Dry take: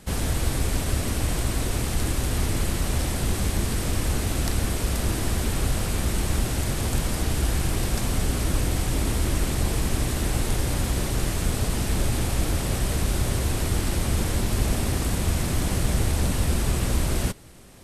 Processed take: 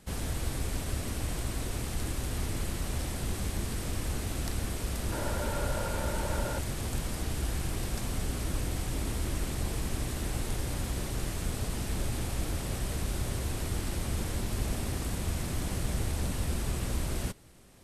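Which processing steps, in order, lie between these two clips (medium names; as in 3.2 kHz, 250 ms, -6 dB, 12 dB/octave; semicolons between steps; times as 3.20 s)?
5.12–6.59 s: small resonant body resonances 580/900/1400 Hz, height 15 dB, ringing for 35 ms; trim -8.5 dB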